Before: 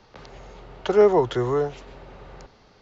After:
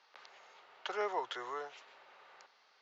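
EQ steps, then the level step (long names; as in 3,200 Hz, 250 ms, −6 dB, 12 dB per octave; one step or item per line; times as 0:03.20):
high-pass filter 1,100 Hz 12 dB per octave
high-frequency loss of the air 65 metres
−6.0 dB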